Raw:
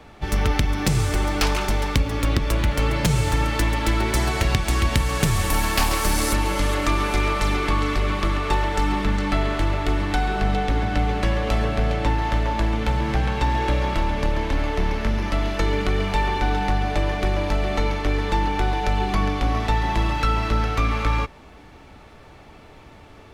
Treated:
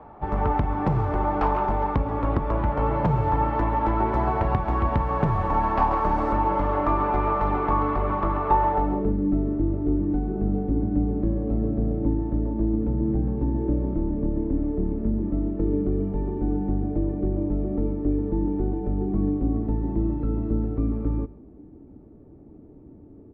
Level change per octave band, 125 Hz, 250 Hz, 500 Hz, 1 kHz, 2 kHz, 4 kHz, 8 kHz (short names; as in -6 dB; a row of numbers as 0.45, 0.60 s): -3.0 dB, +2.5 dB, -1.0 dB, 0.0 dB, -13.5 dB, under -25 dB, under -35 dB